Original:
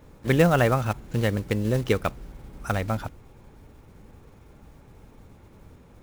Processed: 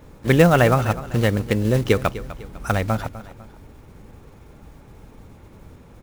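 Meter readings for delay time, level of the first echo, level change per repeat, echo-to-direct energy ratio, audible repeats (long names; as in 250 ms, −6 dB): 251 ms, −15.5 dB, −7.5 dB, −15.0 dB, 2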